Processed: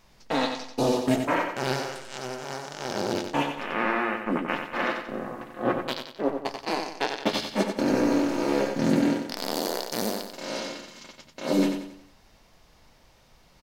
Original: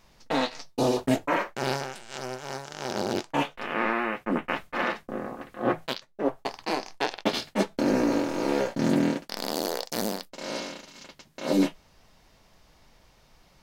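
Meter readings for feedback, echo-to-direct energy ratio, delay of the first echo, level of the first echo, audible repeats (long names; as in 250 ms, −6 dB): 41%, −5.5 dB, 91 ms, −6.5 dB, 4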